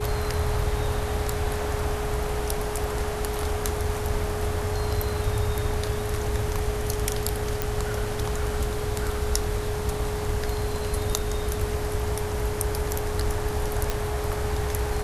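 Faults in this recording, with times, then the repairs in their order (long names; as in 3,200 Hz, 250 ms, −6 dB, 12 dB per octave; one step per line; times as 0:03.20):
whistle 420 Hz −31 dBFS
0:07.62: click
0:13.90: click −10 dBFS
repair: click removal
notch filter 420 Hz, Q 30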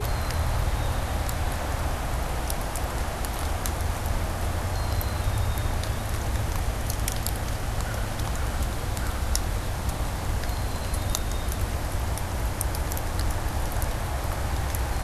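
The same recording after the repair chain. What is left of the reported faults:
0:07.62: click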